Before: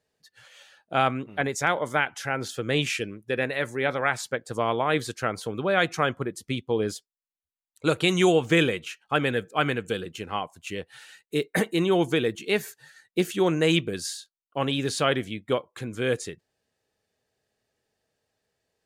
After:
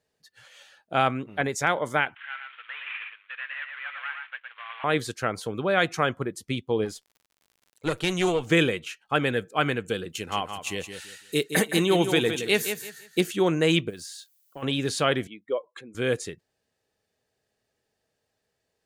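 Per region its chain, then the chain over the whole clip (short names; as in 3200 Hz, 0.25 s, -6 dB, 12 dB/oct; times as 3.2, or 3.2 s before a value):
2.15–4.84 CVSD 16 kbps + HPF 1400 Hz 24 dB/oct + echo 0.114 s -5 dB
6.84–8.46 tube stage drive 14 dB, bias 0.7 + crackle 96/s -47 dBFS
10.09–13.21 high shelf 3300 Hz +9.5 dB + feedback echo 0.168 s, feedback 26%, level -8.5 dB
13.89–14.62 compressor 5:1, threshold -37 dBFS + added noise violet -66 dBFS
15.27–15.95 spectral contrast raised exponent 1.7 + HPF 440 Hz + notch 1500 Hz, Q 14
whole clip: dry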